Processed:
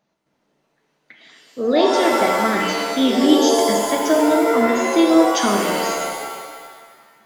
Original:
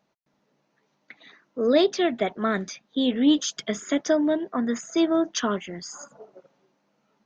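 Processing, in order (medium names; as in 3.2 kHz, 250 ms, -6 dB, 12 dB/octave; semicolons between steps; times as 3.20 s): gain riding within 3 dB 2 s; pitch-shifted reverb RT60 1.5 s, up +7 st, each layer -2 dB, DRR 1 dB; trim +2.5 dB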